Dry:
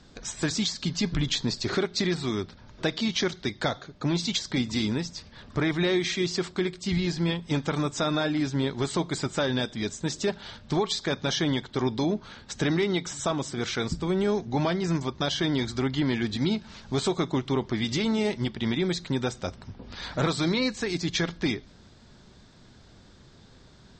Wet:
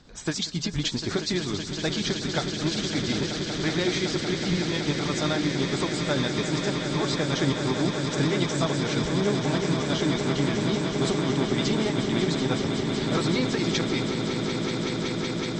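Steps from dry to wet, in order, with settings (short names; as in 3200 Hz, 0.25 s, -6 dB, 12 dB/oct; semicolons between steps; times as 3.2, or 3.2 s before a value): granular stretch 0.65×, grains 0.144 s; swelling echo 0.187 s, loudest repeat 8, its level -10 dB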